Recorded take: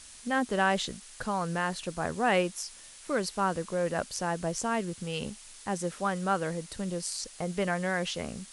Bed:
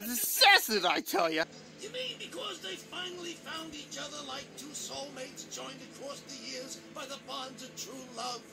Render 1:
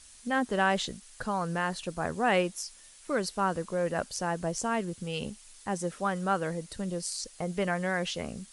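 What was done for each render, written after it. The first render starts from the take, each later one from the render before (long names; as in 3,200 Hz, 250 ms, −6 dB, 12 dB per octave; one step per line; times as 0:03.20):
broadband denoise 6 dB, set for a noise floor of −50 dBFS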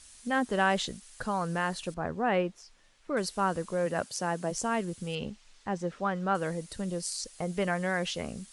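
0:01.94–0:03.17: head-to-tape spacing loss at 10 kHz 24 dB
0:03.85–0:04.50: high-pass filter 66 Hz → 170 Hz 24 dB per octave
0:05.15–0:06.35: high-frequency loss of the air 130 metres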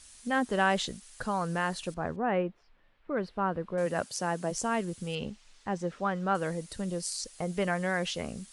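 0:02.16–0:03.78: high-frequency loss of the air 410 metres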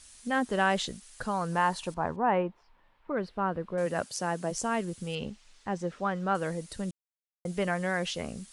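0:01.52–0:03.12: parametric band 940 Hz +11 dB 0.46 octaves
0:06.91–0:07.45: silence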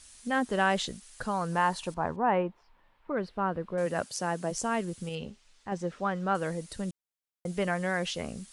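0:05.09–0:05.72: tuned comb filter 81 Hz, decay 0.18 s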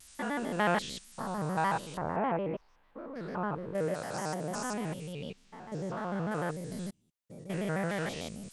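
spectrum averaged block by block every 200 ms
pitch modulation by a square or saw wave square 6.7 Hz, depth 160 cents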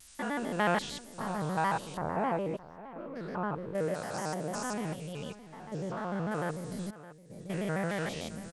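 single-tap delay 615 ms −16 dB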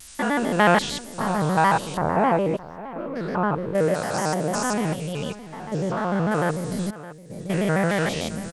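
level +11 dB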